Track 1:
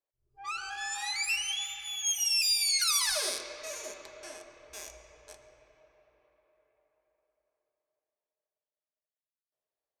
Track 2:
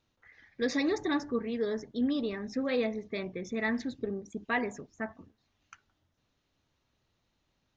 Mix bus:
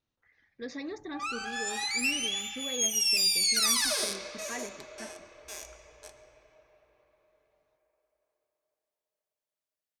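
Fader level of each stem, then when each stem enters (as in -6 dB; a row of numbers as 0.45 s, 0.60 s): +1.5 dB, -9.5 dB; 0.75 s, 0.00 s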